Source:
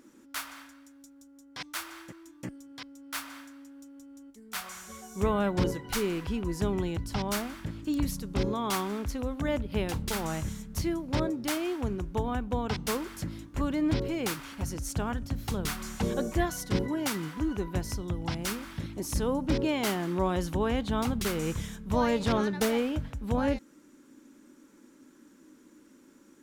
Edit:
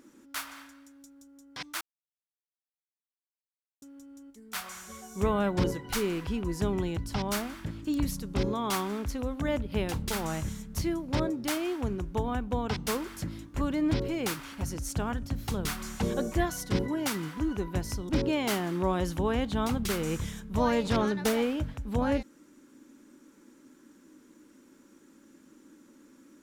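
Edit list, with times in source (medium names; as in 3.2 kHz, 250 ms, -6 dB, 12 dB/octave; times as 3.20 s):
1.81–3.82 s: mute
18.09–19.45 s: delete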